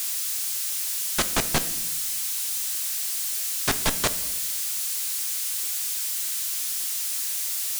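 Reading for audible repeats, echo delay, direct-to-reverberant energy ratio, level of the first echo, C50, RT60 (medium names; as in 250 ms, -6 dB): no echo, no echo, 10.0 dB, no echo, 14.0 dB, 1.0 s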